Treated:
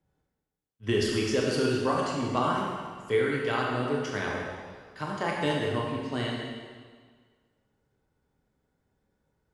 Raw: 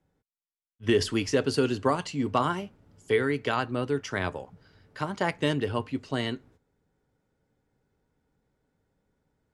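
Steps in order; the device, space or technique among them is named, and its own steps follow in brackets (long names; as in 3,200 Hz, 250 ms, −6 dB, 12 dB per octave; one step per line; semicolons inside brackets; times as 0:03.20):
stairwell (convolution reverb RT60 1.6 s, pre-delay 20 ms, DRR −2.5 dB)
level −4.5 dB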